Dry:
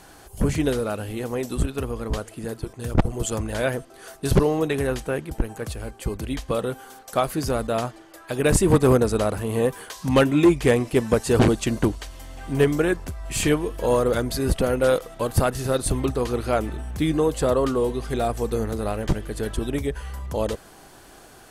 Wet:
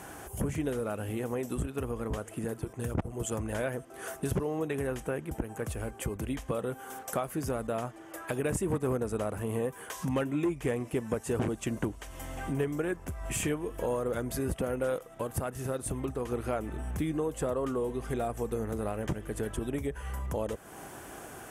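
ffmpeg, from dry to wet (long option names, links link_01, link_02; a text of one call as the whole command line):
ffmpeg -i in.wav -filter_complex "[0:a]asplit=3[link_01][link_02][link_03];[link_01]atrim=end=15.032[link_04];[link_02]atrim=start=15.028:end=16.322,asetpts=PTS-STARTPTS,volume=-4.5dB[link_05];[link_03]atrim=start=16.318[link_06];[link_04][link_05]acrossfade=duration=0.004:curve1=hsin:curve2=hsin[link_07];[link_07][link_06]acrossfade=duration=0.004:curve1=hsin:curve2=hsin,highpass=61,equalizer=frequency=4300:width_type=o:width=0.61:gain=-13,acompressor=threshold=-37dB:ratio=3,volume=3.5dB" out.wav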